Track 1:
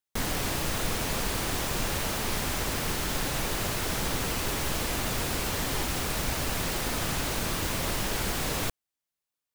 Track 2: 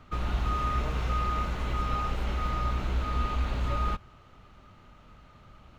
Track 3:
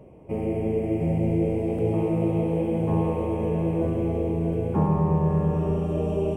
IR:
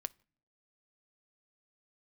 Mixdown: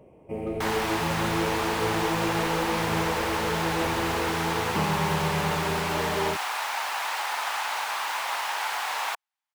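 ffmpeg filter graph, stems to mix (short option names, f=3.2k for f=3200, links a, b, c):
-filter_complex "[0:a]highpass=f=850:t=q:w=4,equalizer=f=2k:w=0.43:g=11,adelay=450,volume=-8dB[a];[1:a]acompressor=threshold=-37dB:ratio=6,adelay=350,volume=-6.5dB[b];[2:a]lowshelf=f=280:g=-8,volume=-1dB[c];[a][b][c]amix=inputs=3:normalize=0"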